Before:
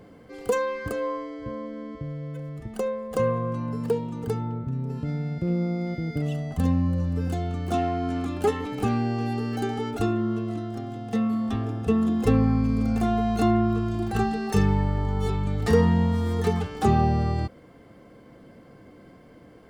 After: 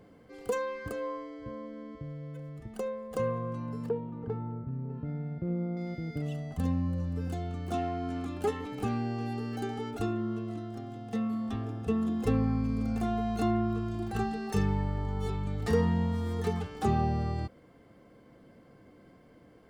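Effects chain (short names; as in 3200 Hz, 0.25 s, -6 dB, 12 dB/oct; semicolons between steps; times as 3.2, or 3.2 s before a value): 3.89–5.77 LPF 1600 Hz 12 dB/oct; gain -7 dB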